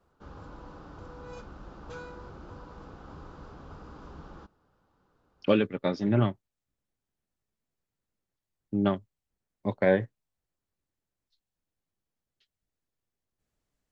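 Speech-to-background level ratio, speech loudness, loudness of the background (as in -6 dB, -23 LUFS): 19.0 dB, -28.0 LUFS, -47.0 LUFS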